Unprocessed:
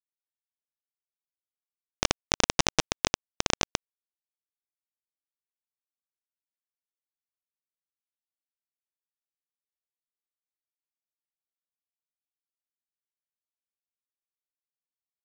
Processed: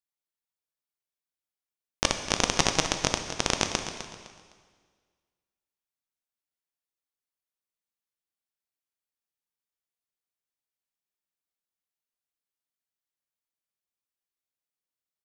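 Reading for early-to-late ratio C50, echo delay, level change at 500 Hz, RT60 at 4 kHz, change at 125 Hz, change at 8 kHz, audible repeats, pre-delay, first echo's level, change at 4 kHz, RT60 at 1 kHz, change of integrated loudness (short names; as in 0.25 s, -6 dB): 6.5 dB, 0.255 s, +1.5 dB, 1.6 s, +1.0 dB, +1.0 dB, 3, 5 ms, -11.5 dB, +1.0 dB, 1.7 s, +1.0 dB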